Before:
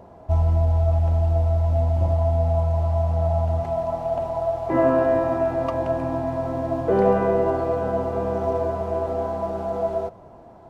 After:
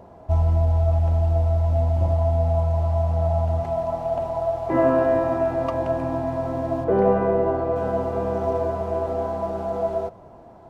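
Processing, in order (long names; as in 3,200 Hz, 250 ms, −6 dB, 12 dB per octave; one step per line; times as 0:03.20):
0:06.84–0:07.76: low-pass filter 1,900 Hz 6 dB per octave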